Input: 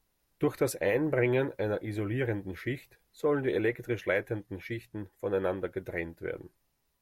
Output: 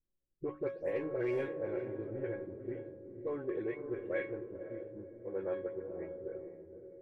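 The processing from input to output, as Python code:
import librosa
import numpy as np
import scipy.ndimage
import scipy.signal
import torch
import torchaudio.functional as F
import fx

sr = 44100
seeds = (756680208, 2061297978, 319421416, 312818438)

y = fx.spec_delay(x, sr, highs='late', ms=163)
y = fx.peak_eq(y, sr, hz=380.0, db=9.0, octaves=0.46)
y = fx.hum_notches(y, sr, base_hz=50, count=6)
y = y + 10.0 ** (-20.5 / 20.0) * np.pad(y, (int(178 * sr / 1000.0), 0))[:len(y)]
y = np.clip(y, -10.0 ** (-15.0 / 20.0), 10.0 ** (-15.0 / 20.0))
y = fx.comb_fb(y, sr, f0_hz=550.0, decay_s=0.56, harmonics='all', damping=0.0, mix_pct=90)
y = fx.echo_diffused(y, sr, ms=515, feedback_pct=46, wet_db=-6)
y = fx.env_lowpass(y, sr, base_hz=320.0, full_db=-31.5)
y = y * librosa.db_to_amplitude(6.0)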